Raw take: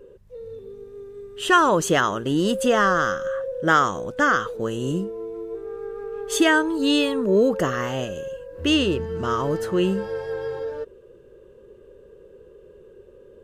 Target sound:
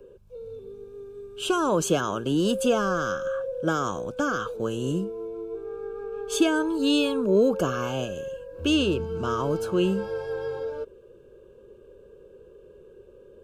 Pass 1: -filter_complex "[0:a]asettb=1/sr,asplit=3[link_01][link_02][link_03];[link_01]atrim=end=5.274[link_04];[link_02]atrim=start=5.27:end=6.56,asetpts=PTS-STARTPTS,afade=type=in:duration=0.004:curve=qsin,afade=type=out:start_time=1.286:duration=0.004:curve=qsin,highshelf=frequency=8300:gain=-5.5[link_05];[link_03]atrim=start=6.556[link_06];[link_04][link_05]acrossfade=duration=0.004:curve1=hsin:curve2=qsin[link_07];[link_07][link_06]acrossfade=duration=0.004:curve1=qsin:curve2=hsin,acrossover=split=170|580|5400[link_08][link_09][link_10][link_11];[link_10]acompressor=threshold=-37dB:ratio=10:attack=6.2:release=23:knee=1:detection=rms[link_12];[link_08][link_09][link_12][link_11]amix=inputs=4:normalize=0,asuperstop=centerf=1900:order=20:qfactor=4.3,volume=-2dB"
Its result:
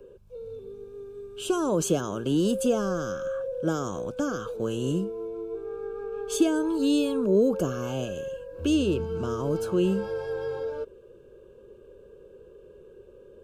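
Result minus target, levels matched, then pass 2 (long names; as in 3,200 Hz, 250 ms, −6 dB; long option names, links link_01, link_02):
downward compressor: peak gain reduction +10.5 dB
-filter_complex "[0:a]asettb=1/sr,asplit=3[link_01][link_02][link_03];[link_01]atrim=end=5.274[link_04];[link_02]atrim=start=5.27:end=6.56,asetpts=PTS-STARTPTS,afade=type=in:duration=0.004:curve=qsin,afade=type=out:start_time=1.286:duration=0.004:curve=qsin,highshelf=frequency=8300:gain=-5.5[link_05];[link_03]atrim=start=6.556[link_06];[link_04][link_05]acrossfade=duration=0.004:curve1=hsin:curve2=qsin[link_07];[link_07][link_06]acrossfade=duration=0.004:curve1=qsin:curve2=hsin,acrossover=split=170|580|5400[link_08][link_09][link_10][link_11];[link_10]acompressor=threshold=-25.5dB:ratio=10:attack=6.2:release=23:knee=1:detection=rms[link_12];[link_08][link_09][link_12][link_11]amix=inputs=4:normalize=0,asuperstop=centerf=1900:order=20:qfactor=4.3,volume=-2dB"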